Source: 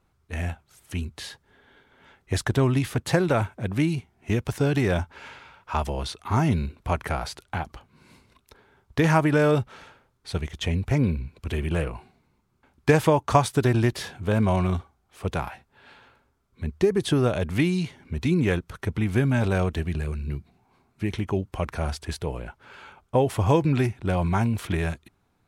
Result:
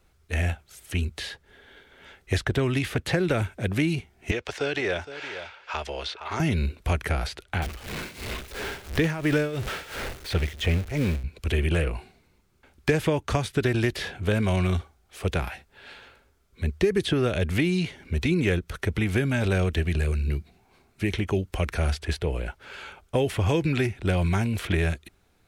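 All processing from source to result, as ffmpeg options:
ffmpeg -i in.wav -filter_complex "[0:a]asettb=1/sr,asplit=3[link_01][link_02][link_03];[link_01]atrim=end=4.314[link_04];[link_02]atrim=start=4.31:end=6.4,asetpts=PTS-STARTPTS,afade=type=in:duration=0.004:curve=qsin,afade=type=out:start_time=2.086:duration=0.004:curve=qsin,acrossover=split=410 6800:gain=0.141 1 0.0794[link_05][link_06][link_07];[link_05][link_06][link_07]amix=inputs=3:normalize=0,aecho=1:1:463:0.178,atrim=end_sample=92169[link_08];[link_03]atrim=start=6.396[link_09];[link_04][link_08]acrossfade=duration=0.004:curve1=hsin:curve2=qsin[link_10];[link_10][link_09]acrossfade=duration=0.004:curve1=qsin:curve2=hsin,asettb=1/sr,asplit=3[link_11][link_12][link_13];[link_11]atrim=end=7.624[link_14];[link_12]atrim=start=7.62:end=11.24,asetpts=PTS-STARTPTS,afade=type=in:duration=0.004:curve=qsin,afade=type=out:start_time=3.616:duration=0.004:curve=qsin,aeval=exprs='val(0)+0.5*0.0335*sgn(val(0))':channel_layout=same,tremolo=f=2.9:d=0.83[link_15];[link_13]atrim=start=11.236[link_16];[link_14][link_15]acrossfade=duration=0.004:curve1=hsin:curve2=qsin[link_17];[link_17][link_16]acrossfade=duration=0.004:curve1=qsin:curve2=hsin,acrossover=split=420|1200|3400[link_18][link_19][link_20][link_21];[link_18]acompressor=threshold=-23dB:ratio=4[link_22];[link_19]acompressor=threshold=-39dB:ratio=4[link_23];[link_20]acompressor=threshold=-36dB:ratio=4[link_24];[link_21]acompressor=threshold=-52dB:ratio=4[link_25];[link_22][link_23][link_24][link_25]amix=inputs=4:normalize=0,equalizer=frequency=125:width_type=o:width=1:gain=-8,equalizer=frequency=250:width_type=o:width=1:gain=-6,equalizer=frequency=1000:width_type=o:width=1:gain=-9,volume=8.5dB" out.wav

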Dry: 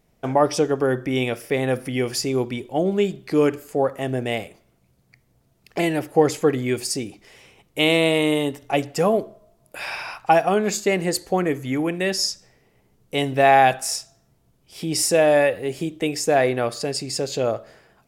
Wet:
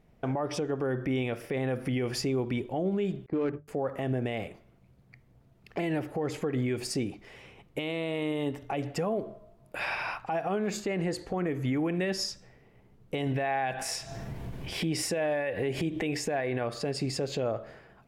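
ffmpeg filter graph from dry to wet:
ffmpeg -i in.wav -filter_complex "[0:a]asettb=1/sr,asplit=3[link_01][link_02][link_03];[link_01]atrim=end=3.264[link_04];[link_02]atrim=start=3.26:end=3.68,asetpts=PTS-STARTPTS,afade=type=in:duration=0.004:curve=qsin,afade=type=out:start_time=0.416:duration=0.004:curve=qsin,agate=range=-33dB:threshold=-30dB:ratio=3:release=100:detection=peak,bandreject=frequency=50:width_type=h:width=6,bandreject=frequency=100:width_type=h:width=6,bandreject=frequency=150:width_type=h:width=6,adynamicsmooth=sensitivity=1.5:basefreq=1100[link_05];[link_03]atrim=start=3.676[link_06];[link_04][link_05]acrossfade=duration=0.004:curve1=hsin:curve2=qsin[link_07];[link_07][link_06]acrossfade=duration=0.004:curve1=qsin:curve2=hsin,asettb=1/sr,asplit=3[link_08][link_09][link_10];[link_08]atrim=end=10.824[link_11];[link_09]atrim=start=10.82:end=11.34,asetpts=PTS-STARTPTS,afade=type=in:duration=0.004:curve=qsin,afade=type=out:start_time=0.516:duration=0.004:curve=qsin,lowpass=10000,acompressor=threshold=-24dB:ratio=5:attack=3.2:release=140:knee=1:detection=peak[link_12];[link_10]atrim=start=11.336[link_13];[link_11][link_12]acrossfade=duration=0.004:curve1=hsin:curve2=qsin[link_14];[link_14][link_13]acrossfade=duration=0.004:curve1=qsin:curve2=hsin,asettb=1/sr,asplit=3[link_15][link_16][link_17];[link_15]atrim=end=13.274[link_18];[link_16]atrim=start=13.27:end=16.64,asetpts=PTS-STARTPTS,afade=type=in:duration=0.004:curve=qsin,afade=type=out:start_time=3.366:duration=0.004:curve=qsin,bandreject=frequency=1300:width=7.3,acompressor=mode=upward:threshold=-21dB:ratio=2.5:attack=3.2:release=140:knee=2.83:detection=peak,equalizer=frequency=1900:width_type=o:width=1.6:gain=4.5[link_19];[link_17]atrim=start=16.636[link_20];[link_18][link_19]acrossfade=duration=0.004:curve1=hsin:curve2=qsin[link_21];[link_21][link_20]acrossfade=duration=0.004:curve1=qsin:curve2=hsin,bass=frequency=250:gain=3,treble=frequency=4000:gain=-12,acompressor=threshold=-19dB:ratio=6,alimiter=limit=-22dB:level=0:latency=1:release=106" out.wav

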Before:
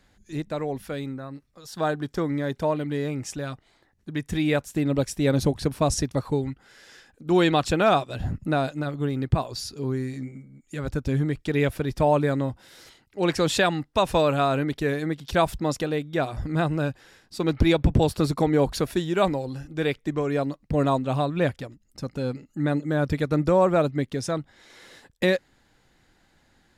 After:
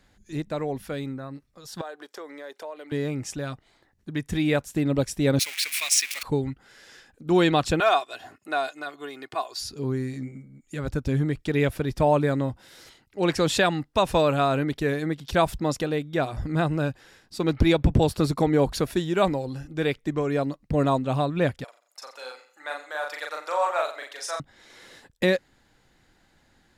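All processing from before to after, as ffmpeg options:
ffmpeg -i in.wav -filter_complex "[0:a]asettb=1/sr,asplit=3[link_01][link_02][link_03];[link_01]atrim=end=1.814[link_04];[link_02]atrim=start=1.81:end=2.92,asetpts=PTS-STARTPTS,afade=type=in:duration=0.004:curve=qsin,afade=type=out:start_time=1.106:duration=0.004:curve=qsin,highpass=frequency=420:width=0.5412,highpass=frequency=420:width=1.3066,acompressor=threshold=-39dB:ratio=2.5:attack=3.2:release=140:knee=1:detection=peak[link_05];[link_03]atrim=start=2.916[link_06];[link_04][link_05]acrossfade=duration=0.004:curve1=hsin:curve2=qsin[link_07];[link_07][link_06]acrossfade=duration=0.004:curve1=qsin:curve2=hsin,asettb=1/sr,asplit=3[link_08][link_09][link_10];[link_08]atrim=end=5.394[link_11];[link_09]atrim=start=5.39:end=6.23,asetpts=PTS-STARTPTS,afade=type=in:duration=0.004:curve=qsin,afade=type=out:start_time=0.836:duration=0.004:curve=qsin,aeval=exprs='val(0)+0.5*0.0316*sgn(val(0))':channel_layout=same,highpass=frequency=2300:width_type=q:width=4.9,highshelf=frequency=4400:gain=7.5[link_12];[link_10]atrim=start=6.226[link_13];[link_11][link_12]acrossfade=duration=0.004:curve1=hsin:curve2=qsin[link_14];[link_14][link_13]acrossfade=duration=0.004:curve1=qsin:curve2=hsin,asettb=1/sr,asplit=3[link_15][link_16][link_17];[link_15]atrim=end=7.804[link_18];[link_16]atrim=start=7.8:end=9.61,asetpts=PTS-STARTPTS,afade=type=in:duration=0.004:curve=qsin,afade=type=out:start_time=1.806:duration=0.004:curve=qsin,highpass=690,aecho=1:1:2.8:0.52,atrim=end_sample=79821[link_19];[link_17]atrim=start=9.606[link_20];[link_18][link_19]acrossfade=duration=0.004:curve1=hsin:curve2=qsin[link_21];[link_21][link_20]acrossfade=duration=0.004:curve1=qsin:curve2=hsin,asettb=1/sr,asplit=3[link_22][link_23][link_24];[link_22]atrim=end=21.644[link_25];[link_23]atrim=start=21.64:end=24.4,asetpts=PTS-STARTPTS,afade=type=in:duration=0.004:curve=qsin,afade=type=out:start_time=2.756:duration=0.004:curve=qsin,highpass=frequency=730:width=0.5412,highpass=frequency=730:width=1.3066,asplit=2[link_26][link_27];[link_27]adelay=39,volume=-2.5dB[link_28];[link_26][link_28]amix=inputs=2:normalize=0,atrim=end_sample=121716,aecho=1:1:88|176|264:0.211|0.0697|0.023,atrim=end_sample=121716[link_29];[link_24]atrim=start=24.396[link_30];[link_25][link_29]acrossfade=duration=0.004:curve1=hsin:curve2=qsin[link_31];[link_31][link_30]acrossfade=duration=0.004:curve1=qsin:curve2=hsin" out.wav

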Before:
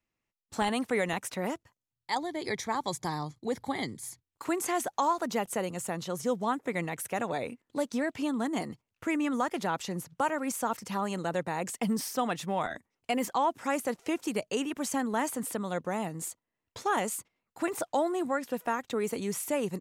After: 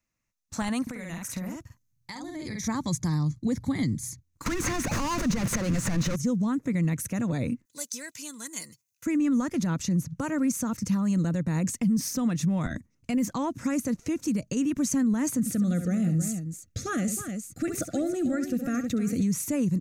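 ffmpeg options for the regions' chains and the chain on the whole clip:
ffmpeg -i in.wav -filter_complex "[0:a]asettb=1/sr,asplit=3[link_01][link_02][link_03];[link_01]atrim=end=0.824[link_04];[link_02]atrim=start=0.82:end=2.68,asetpts=PTS-STARTPTS,afade=type=in:duration=0.004:curve=qsin,afade=type=out:start_time=1.856:duration=0.004:curve=qsin,equalizer=frequency=12000:width=6.3:gain=9,asplit=2[link_05][link_06];[link_06]adelay=48,volume=-2.5dB[link_07];[link_05][link_07]amix=inputs=2:normalize=0,atrim=end_sample=82026,acompressor=threshold=-36dB:ratio=8:attack=3.2:release=140:knee=1:detection=peak[link_08];[link_03]atrim=start=2.676[link_09];[link_04][link_08]acrossfade=duration=0.004:curve1=hsin:curve2=qsin[link_10];[link_10][link_09]acrossfade=duration=0.004:curve1=qsin:curve2=hsin,asettb=1/sr,asplit=3[link_11][link_12][link_13];[link_11]atrim=end=4.464[link_14];[link_12]atrim=start=4.46:end=6.16,asetpts=PTS-STARTPTS,afade=type=in:duration=0.004:curve=qsin,afade=type=out:start_time=1.696:duration=0.004:curve=qsin,aeval=exprs='val(0)+0.5*0.01*sgn(val(0))':channel_layout=same,acrossover=split=930|2100[link_15][link_16][link_17];[link_15]acompressor=threshold=-33dB:ratio=4[link_18];[link_16]acompressor=threshold=-35dB:ratio=4[link_19];[link_17]acompressor=threshold=-50dB:ratio=4[link_20];[link_18][link_19][link_20]amix=inputs=3:normalize=0,asplit=2[link_21][link_22];[link_22]highpass=frequency=720:poles=1,volume=37dB,asoftclip=type=tanh:threshold=-18.5dB[link_23];[link_21][link_23]amix=inputs=2:normalize=0,lowpass=frequency=3200:poles=1,volume=-6dB[link_24];[link_13]atrim=start=6.156[link_25];[link_14][link_24]acrossfade=duration=0.004:curve1=hsin:curve2=qsin[link_26];[link_26][link_25]acrossfade=duration=0.004:curve1=qsin:curve2=hsin,asettb=1/sr,asplit=3[link_27][link_28][link_29];[link_27]atrim=end=7.654[link_30];[link_28]atrim=start=7.65:end=9.06,asetpts=PTS-STARTPTS,afade=type=in:duration=0.004:curve=qsin,afade=type=out:start_time=1.406:duration=0.004:curve=qsin,aderivative,aecho=1:1:2:0.43,atrim=end_sample=62181,acontrast=46[link_31];[link_29]atrim=start=9.056[link_32];[link_30][link_31]acrossfade=duration=0.004:curve1=hsin:curve2=qsin[link_33];[link_33][link_32]acrossfade=duration=0.004:curve1=qsin:curve2=hsin,asettb=1/sr,asplit=3[link_34][link_35][link_36];[link_34]atrim=end=15.394[link_37];[link_35]atrim=start=15.39:end=19.23,asetpts=PTS-STARTPTS,afade=type=in:duration=0.004:curve=qsin,afade=type=out:start_time=3.836:duration=0.004:curve=qsin,asuperstop=centerf=970:order=12:qfactor=2.7,aecho=1:1:68|314:0.282|0.266,atrim=end_sample=169344[link_38];[link_36]atrim=start=19.226[link_39];[link_37][link_38]acrossfade=duration=0.004:curve1=hsin:curve2=qsin[link_40];[link_40][link_39]acrossfade=duration=0.004:curve1=qsin:curve2=hsin,asubboost=boost=9.5:cutoff=240,alimiter=limit=-20.5dB:level=0:latency=1:release=100,equalizer=frequency=400:width_type=o:width=0.33:gain=-11,equalizer=frequency=800:width_type=o:width=0.33:gain=-6,equalizer=frequency=3150:width_type=o:width=0.33:gain=-7,equalizer=frequency=6300:width_type=o:width=0.33:gain=9,volume=2.5dB" out.wav

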